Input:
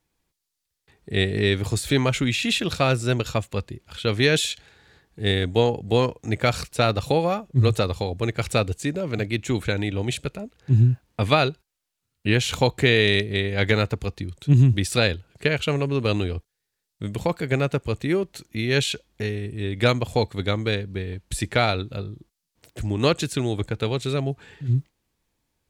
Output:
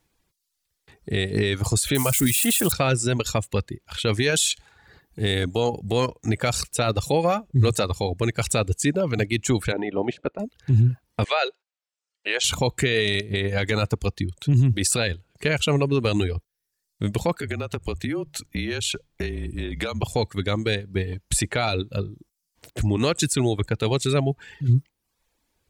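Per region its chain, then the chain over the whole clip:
1.95–2.72 s: zero-crossing glitches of -18.5 dBFS + resonant high shelf 7.3 kHz +6.5 dB, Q 1.5
4.30–6.08 s: treble shelf 7.5 kHz +6 dB + compression 2:1, threshold -21 dBFS
9.71–10.38 s: spectral peaks clipped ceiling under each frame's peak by 13 dB + band-pass filter 440 Hz, Q 0.72 + distance through air 83 m
11.24–12.44 s: Chebyshev band-pass 510–8800 Hz, order 3 + distance through air 76 m
17.36–20.03 s: hum notches 60/120/180 Hz + frequency shift -32 Hz + compression 20:1, threshold -27 dBFS
whole clip: reverb removal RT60 0.75 s; dynamic bell 8.2 kHz, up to +6 dB, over -48 dBFS, Q 1.4; peak limiter -17 dBFS; trim +5.5 dB

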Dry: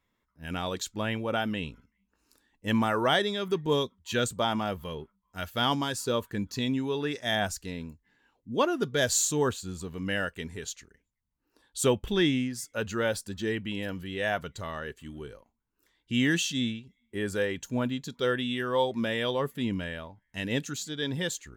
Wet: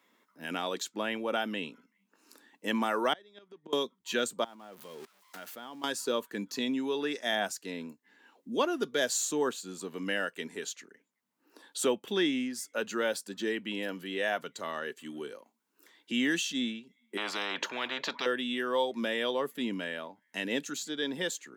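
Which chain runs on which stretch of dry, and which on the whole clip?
3.13–3.73 s: inverted gate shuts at -22 dBFS, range -26 dB + distance through air 70 m
4.44–5.84 s: zero-crossing glitches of -26.5 dBFS + low-pass 1.9 kHz 6 dB/octave + level held to a coarse grid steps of 24 dB
17.17–18.26 s: distance through air 330 m + band-stop 760 Hz, Q 9.9 + spectrum-flattening compressor 10:1
whole clip: high-pass 230 Hz 24 dB/octave; three bands compressed up and down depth 40%; trim -1.5 dB

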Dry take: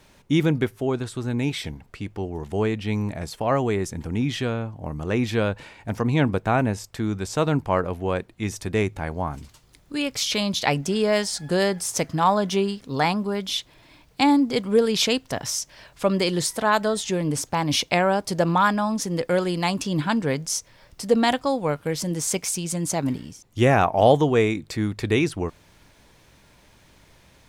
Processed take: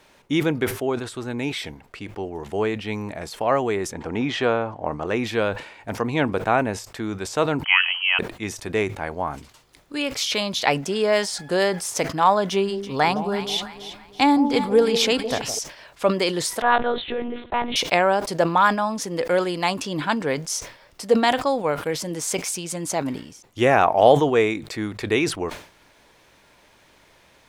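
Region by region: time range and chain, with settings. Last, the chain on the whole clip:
3.93–5.07 s: low-pass 7.1 kHz + peaking EQ 790 Hz +8 dB 2.5 oct
7.64–8.19 s: frequency inversion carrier 3.1 kHz + high-pass 760 Hz 24 dB/octave + peaking EQ 1 kHz +12 dB 0.91 oct
12.50–15.59 s: bass shelf 100 Hz +11.5 dB + echo whose repeats swap between lows and highs 164 ms, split 830 Hz, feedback 61%, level -8 dB
16.62–17.76 s: hum notches 60/120/180/240/300/360 Hz + monotone LPC vocoder at 8 kHz 240 Hz
whole clip: tone controls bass -11 dB, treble -4 dB; decay stretcher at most 120 dB/s; trim +2.5 dB

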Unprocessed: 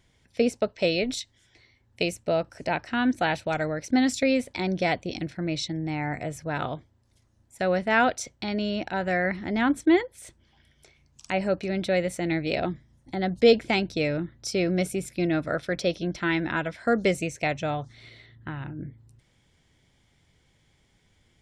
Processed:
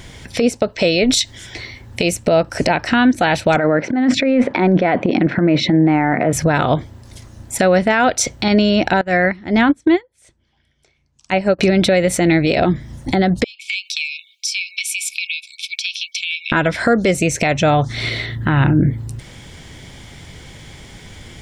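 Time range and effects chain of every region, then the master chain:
3.56–6.33 s: Chebyshev band-pass 210–1600 Hz + compressor with a negative ratio -34 dBFS
9.01–11.59 s: low-pass 9.1 kHz + upward expansion 2.5:1, over -35 dBFS
13.44–16.52 s: brick-wall FIR high-pass 2.2 kHz + tilt EQ -3 dB/octave + compression 16:1, threshold -44 dBFS
whole clip: compression 16:1, threshold -35 dBFS; loudness maximiser +31 dB; trim -4 dB

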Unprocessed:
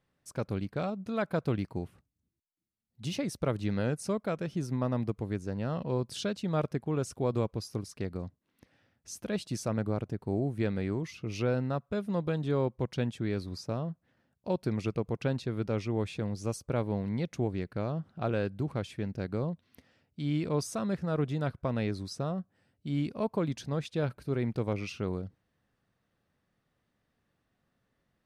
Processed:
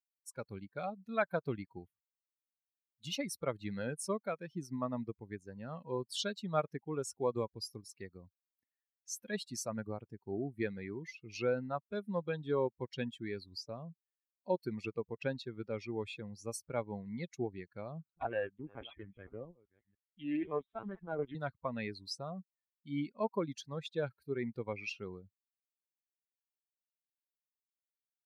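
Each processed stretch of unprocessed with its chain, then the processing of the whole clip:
18.11–21.35 s: chunks repeated in reverse 460 ms, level -12 dB + LPC vocoder at 8 kHz pitch kept + loudspeaker Doppler distortion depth 0.35 ms
whole clip: expander on every frequency bin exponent 2; high-pass 560 Hz 6 dB/octave; trim +5 dB

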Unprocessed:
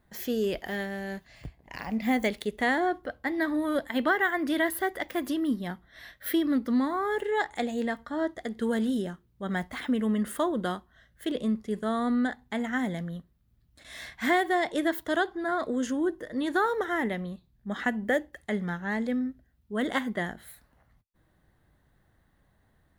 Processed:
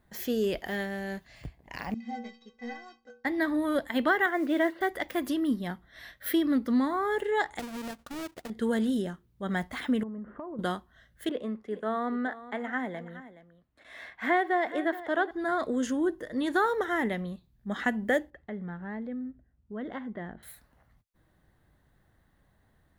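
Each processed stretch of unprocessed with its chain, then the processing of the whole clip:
1.94–3.25 s: CVSD coder 32 kbps + short-mantissa float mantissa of 8-bit + inharmonic resonator 230 Hz, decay 0.46 s, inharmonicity 0.03
4.26–4.81 s: cabinet simulation 230–3400 Hz, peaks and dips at 350 Hz +3 dB, 580 Hz +4 dB, 1.1 kHz -3 dB, 1.8 kHz -4 dB, 3.2 kHz -4 dB + modulation noise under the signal 31 dB
7.59–8.50 s: square wave that keeps the level + power-law waveshaper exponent 1.4 + compression 3:1, threshold -39 dBFS
10.03–10.59 s: low-pass 1.3 kHz 24 dB/octave + compression 8:1, threshold -36 dBFS
11.29–15.31 s: three-band isolator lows -14 dB, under 280 Hz, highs -16 dB, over 2.7 kHz + delay 421 ms -15 dB
18.30–20.43 s: tape spacing loss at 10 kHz 39 dB + compression 2:1, threshold -38 dBFS
whole clip: none

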